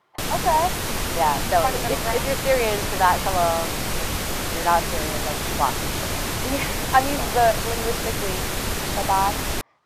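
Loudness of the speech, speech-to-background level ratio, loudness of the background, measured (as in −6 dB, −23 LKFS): −24.0 LKFS, 1.5 dB, −25.5 LKFS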